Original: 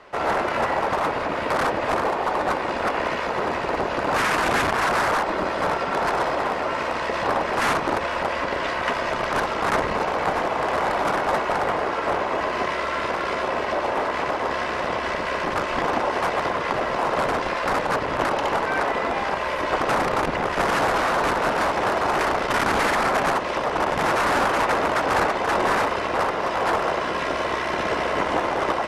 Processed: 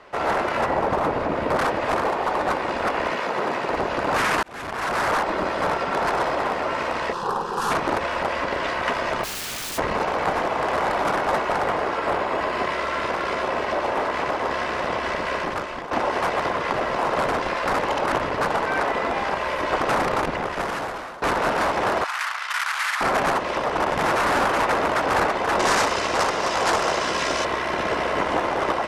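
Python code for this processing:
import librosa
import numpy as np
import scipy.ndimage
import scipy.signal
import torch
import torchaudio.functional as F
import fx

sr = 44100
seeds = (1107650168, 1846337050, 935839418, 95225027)

y = fx.tilt_shelf(x, sr, db=5.0, hz=890.0, at=(0.66, 1.58))
y = fx.highpass(y, sr, hz=140.0, slope=12, at=(3.11, 3.7))
y = fx.fixed_phaser(y, sr, hz=420.0, stages=8, at=(7.12, 7.7), fade=0.02)
y = fx.overflow_wrap(y, sr, gain_db=26.0, at=(9.23, 9.77), fade=0.02)
y = fx.notch(y, sr, hz=6000.0, q=12.0, at=(11.96, 12.73))
y = fx.highpass(y, sr, hz=1200.0, slope=24, at=(22.04, 23.01))
y = fx.peak_eq(y, sr, hz=6500.0, db=13.0, octaves=1.6, at=(25.59, 27.45))
y = fx.edit(y, sr, fx.fade_in_span(start_s=4.43, length_s=0.7),
    fx.fade_out_to(start_s=15.35, length_s=0.56, floor_db=-13.5),
    fx.reverse_span(start_s=17.83, length_s=0.71),
    fx.fade_out_to(start_s=20.12, length_s=1.1, floor_db=-20.5), tone=tone)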